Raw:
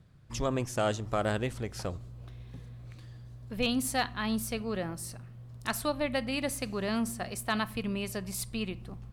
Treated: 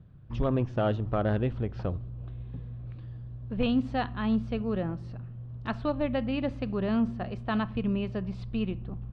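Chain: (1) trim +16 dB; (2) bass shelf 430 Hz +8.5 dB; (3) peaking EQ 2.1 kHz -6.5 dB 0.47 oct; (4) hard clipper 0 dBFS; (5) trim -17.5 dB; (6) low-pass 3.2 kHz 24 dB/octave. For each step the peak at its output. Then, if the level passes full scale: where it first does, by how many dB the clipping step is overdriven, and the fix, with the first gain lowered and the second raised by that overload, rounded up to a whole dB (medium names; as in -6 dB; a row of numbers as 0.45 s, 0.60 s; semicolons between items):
-1.5 dBFS, +4.0 dBFS, +3.5 dBFS, 0.0 dBFS, -17.5 dBFS, -17.0 dBFS; step 2, 3.5 dB; step 1 +12 dB, step 5 -13.5 dB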